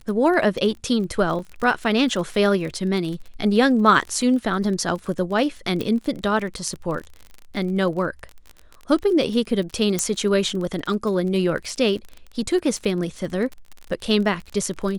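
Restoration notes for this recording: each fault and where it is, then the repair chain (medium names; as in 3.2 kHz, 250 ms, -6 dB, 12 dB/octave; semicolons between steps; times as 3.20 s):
crackle 34 per s -29 dBFS
1.39 s: dropout 3 ms
5.81 s: pop -13 dBFS
9.99 s: pop -7 dBFS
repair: de-click; interpolate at 1.39 s, 3 ms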